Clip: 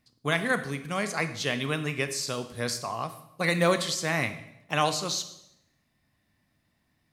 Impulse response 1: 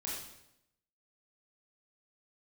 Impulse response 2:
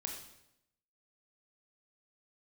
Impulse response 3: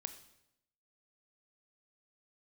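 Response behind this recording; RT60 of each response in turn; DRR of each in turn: 3; 0.85, 0.85, 0.85 seconds; −6.0, 1.0, 9.0 decibels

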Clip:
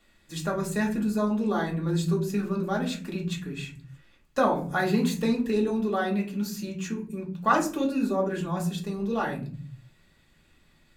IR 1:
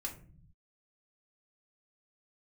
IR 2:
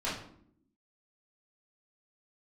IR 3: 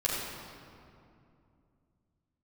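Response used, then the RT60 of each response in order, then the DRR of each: 1; 0.45, 0.65, 2.6 seconds; −1.5, −11.0, −8.5 decibels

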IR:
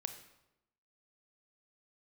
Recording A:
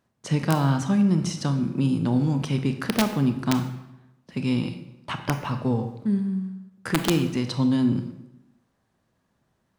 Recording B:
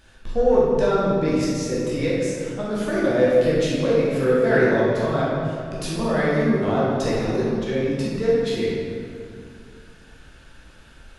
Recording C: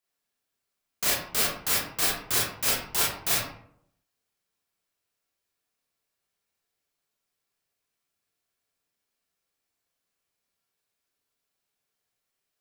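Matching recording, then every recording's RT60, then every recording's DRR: A; 0.90, 2.4, 0.65 seconds; 7.5, −8.0, −6.0 decibels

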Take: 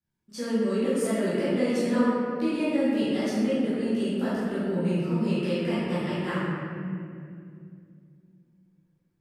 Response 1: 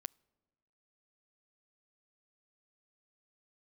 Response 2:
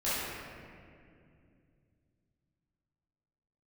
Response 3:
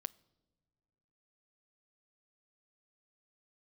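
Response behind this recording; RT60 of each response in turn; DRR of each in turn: 2; 1.2 s, 2.4 s, non-exponential decay; 20.5, −13.0, 18.0 decibels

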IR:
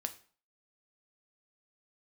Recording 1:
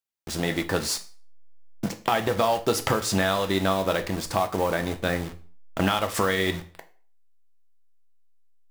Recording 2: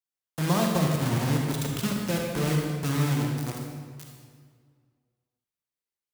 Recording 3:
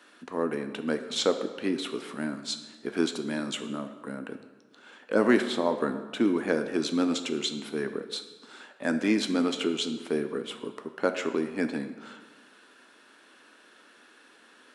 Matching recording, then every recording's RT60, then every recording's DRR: 1; 0.45, 1.9, 1.3 seconds; 6.5, 0.0, 7.5 decibels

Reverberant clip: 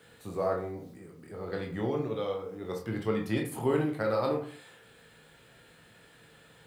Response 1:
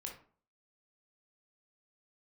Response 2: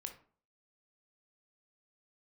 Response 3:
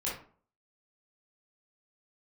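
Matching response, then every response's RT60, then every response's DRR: 1; 0.45, 0.45, 0.45 seconds; 0.5, 5.0, −7.0 decibels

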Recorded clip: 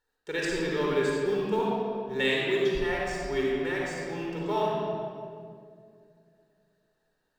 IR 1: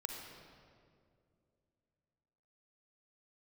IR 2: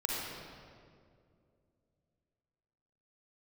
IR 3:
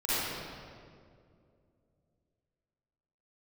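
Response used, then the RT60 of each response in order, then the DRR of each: 2; 2.4, 2.3, 2.3 seconds; 2.0, −3.5, −13.0 decibels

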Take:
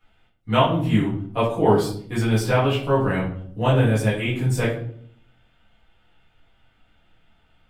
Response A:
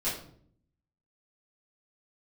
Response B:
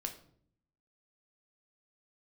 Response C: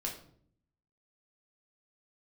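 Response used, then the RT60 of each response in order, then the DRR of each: A; 0.60, 0.60, 0.60 seconds; −11.0, 4.0, −1.0 decibels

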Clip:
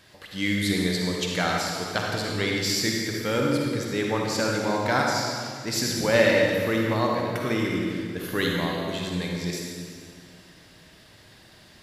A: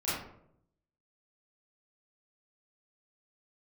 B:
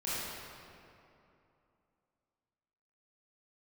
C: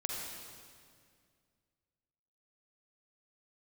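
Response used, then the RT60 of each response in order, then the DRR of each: C; 0.70, 2.8, 2.1 seconds; −12.5, −11.0, −1.5 decibels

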